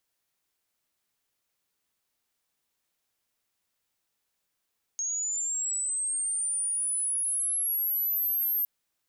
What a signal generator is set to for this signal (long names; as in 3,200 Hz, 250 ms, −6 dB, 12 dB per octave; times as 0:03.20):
glide linear 6,500 Hz → 13,000 Hz −28 dBFS → −24.5 dBFS 3.66 s